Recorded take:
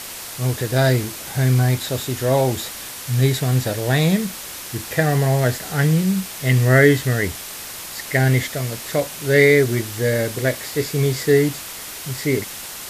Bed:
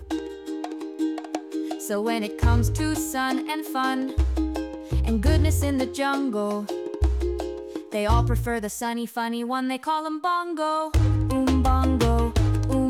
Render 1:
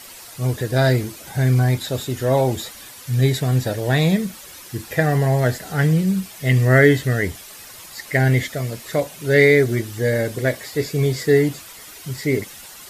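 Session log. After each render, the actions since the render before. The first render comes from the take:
broadband denoise 10 dB, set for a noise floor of −34 dBFS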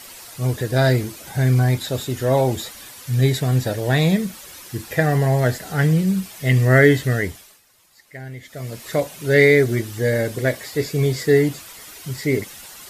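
0:07.15–0:08.88: duck −18 dB, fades 0.46 s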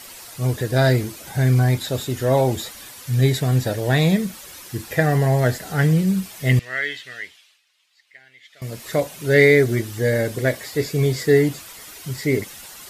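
0:06.59–0:08.62: resonant band-pass 3,000 Hz, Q 1.8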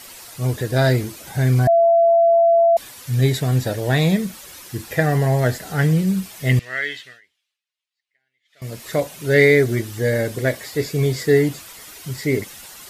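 0:01.67–0:02.77: beep over 674 Hz −10.5 dBFS
0:07.00–0:08.66: duck −23 dB, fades 0.21 s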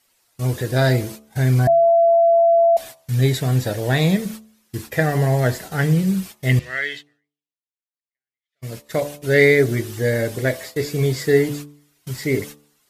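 noise gate −33 dBFS, range −24 dB
hum removal 72.87 Hz, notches 17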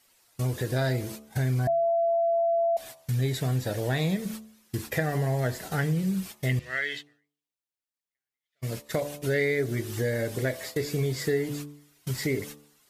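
downward compressor 3 to 1, threshold −27 dBFS, peak gain reduction 13 dB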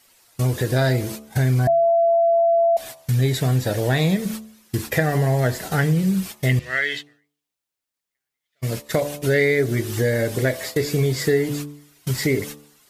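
level +7.5 dB

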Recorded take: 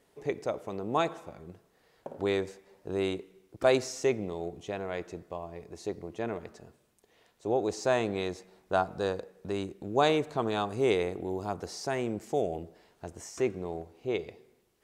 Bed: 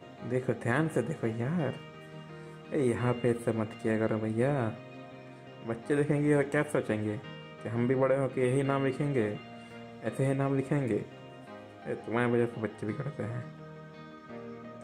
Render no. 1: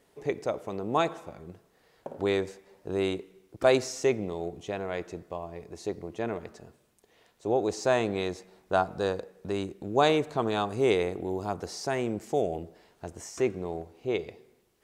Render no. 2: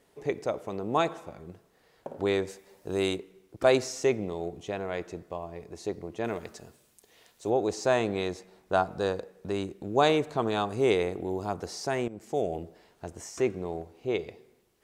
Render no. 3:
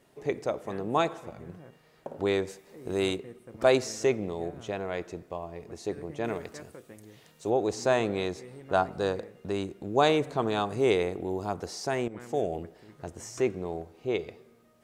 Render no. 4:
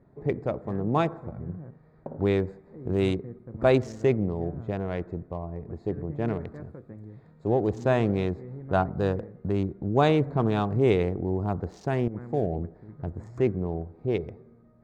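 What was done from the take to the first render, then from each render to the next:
level +2 dB
0:02.48–0:03.15: high-shelf EQ 5,600 Hz → 3,800 Hz +10 dB; 0:06.24–0:07.50: high-shelf EQ 3,000 Hz +10 dB; 0:12.08–0:12.62: fade in equal-power, from −15 dB
mix in bed −18.5 dB
adaptive Wiener filter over 15 samples; bass and treble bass +12 dB, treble −10 dB

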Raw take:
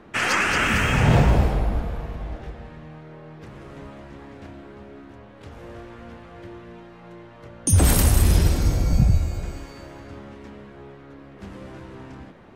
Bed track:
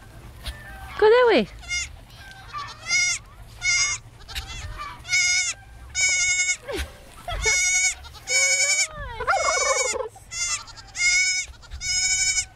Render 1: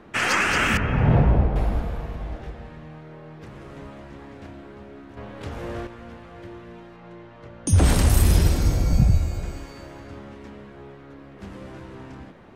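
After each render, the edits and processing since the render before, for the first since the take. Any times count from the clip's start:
0:00.77–0:01.56: head-to-tape spacing loss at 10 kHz 40 dB
0:05.17–0:05.87: clip gain +7.5 dB
0:06.96–0:08.10: high-frequency loss of the air 53 metres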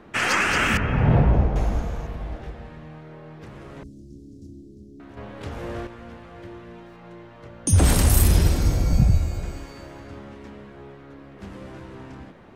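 0:01.33–0:02.07: parametric band 6,400 Hz +13 dB 0.37 octaves
0:03.83–0:05.00: elliptic band-stop filter 330–5,500 Hz, stop band 80 dB
0:06.86–0:08.28: high-shelf EQ 8,900 Hz +9 dB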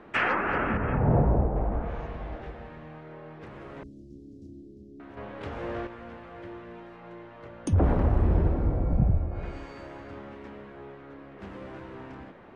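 treble cut that deepens with the level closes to 960 Hz, closed at −17 dBFS
bass and treble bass −6 dB, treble −13 dB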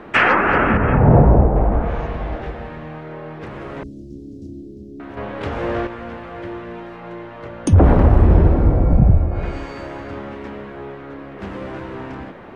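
level +11.5 dB
brickwall limiter −2 dBFS, peak gain reduction 2.5 dB

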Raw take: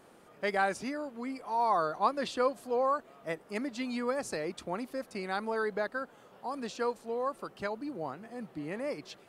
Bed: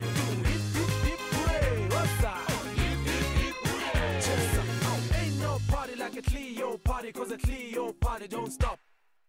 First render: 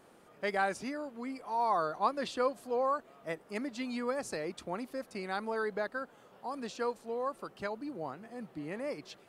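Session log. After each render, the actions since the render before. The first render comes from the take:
level −2 dB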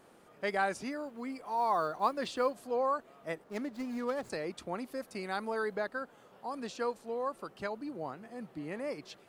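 0:00.90–0:02.64: one scale factor per block 7 bits
0:03.44–0:04.30: running median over 15 samples
0:04.89–0:05.76: high-shelf EQ 9,100 Hz +6 dB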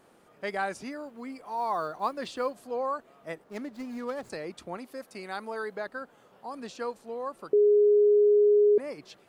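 0:04.77–0:05.86: low-shelf EQ 170 Hz −8 dB
0:07.53–0:08.78: beep over 415 Hz −17 dBFS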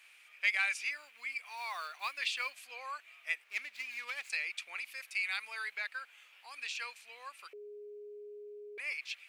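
high-pass with resonance 2,400 Hz, resonance Q 6.4
in parallel at −11 dB: soft clipping −31 dBFS, distortion −11 dB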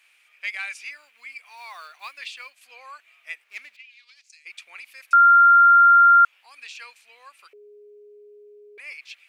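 0:02.14–0:02.61: fade out, to −6.5 dB
0:03.75–0:04.45: resonant band-pass 2,500 Hz → 7,800 Hz, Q 3.5
0:05.13–0:06.25: beep over 1,390 Hz −9.5 dBFS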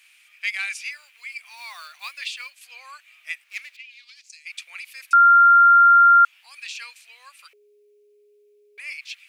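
high-pass filter 430 Hz 12 dB per octave
tilt shelving filter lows −8 dB, about 1,300 Hz

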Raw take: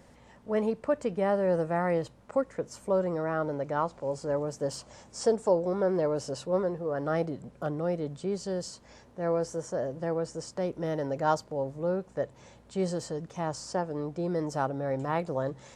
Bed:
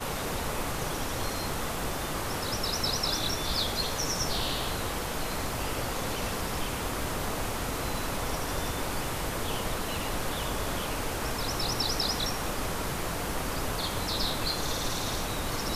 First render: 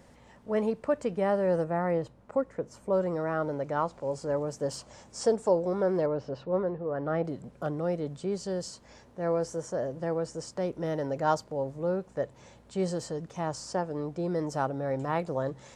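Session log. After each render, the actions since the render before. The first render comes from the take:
0:01.64–0:02.93: high-shelf EQ 2,100 Hz −8.5 dB
0:06.06–0:07.25: high-frequency loss of the air 300 metres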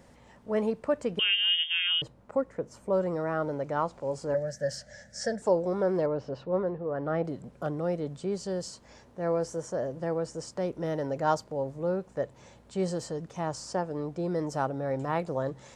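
0:01.19–0:02.02: voice inversion scrambler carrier 3,400 Hz
0:04.34–0:05.42: drawn EQ curve 210 Hz 0 dB, 370 Hz −20 dB, 580 Hz +5 dB, 1,100 Hz −22 dB, 1,700 Hz +14 dB, 2,500 Hz −9 dB, 5,400 Hz +3 dB, 8,100 Hz −4 dB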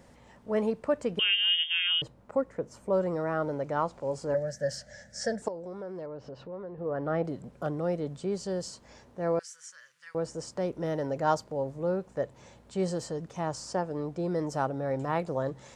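0:05.48–0:06.78: downward compressor 2.5 to 1, threshold −42 dBFS
0:09.39–0:10.15: inverse Chebyshev high-pass filter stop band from 780 Hz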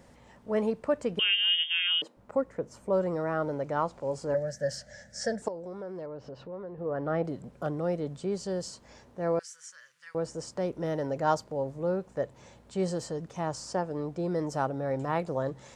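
0:01.54–0:02.17: Butterworth high-pass 220 Hz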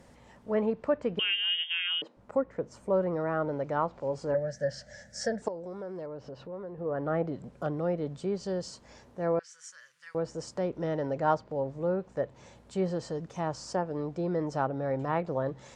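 treble cut that deepens with the level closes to 2,700 Hz, closed at −25 dBFS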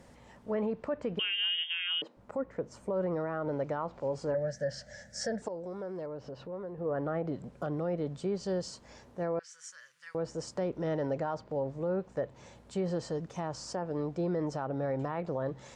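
brickwall limiter −24 dBFS, peak gain reduction 11 dB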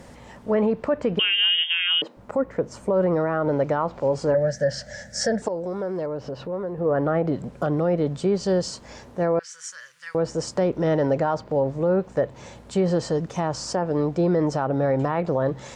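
level +11 dB

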